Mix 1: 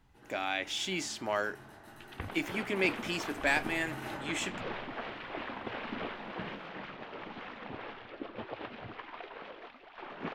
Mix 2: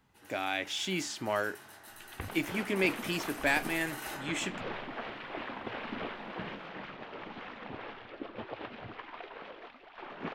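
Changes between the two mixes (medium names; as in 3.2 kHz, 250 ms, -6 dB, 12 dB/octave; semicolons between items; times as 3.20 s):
speech: add bass shelf 160 Hz +9.5 dB; first sound: add tilt EQ +3.5 dB/octave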